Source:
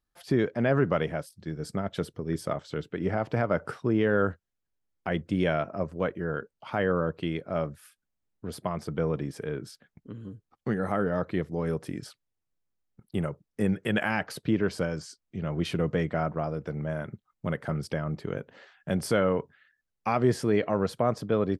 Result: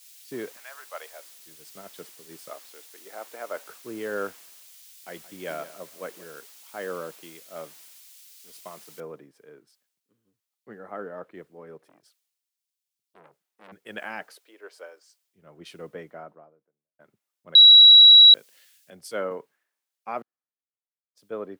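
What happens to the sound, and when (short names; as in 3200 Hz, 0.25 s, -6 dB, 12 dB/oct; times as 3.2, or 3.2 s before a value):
0.55–1.34 HPF 1100 Hz -> 370 Hz 24 dB/oct
2.49–3.68 HPF 400 Hz
4.3–6.33 echo 0.178 s -12.5 dB
9 noise floor step -41 dB -59 dB
11.78–13.72 core saturation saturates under 1900 Hz
14.35–15.21 HPF 420 Hz 24 dB/oct
15.94–16.99 studio fade out
17.55–18.34 bleep 3890 Hz -7 dBFS
18.9–19.31 three-band expander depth 70%
20.22–21.15 room tone
whole clip: HPF 340 Hz 12 dB/oct; three-band expander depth 100%; gain -8.5 dB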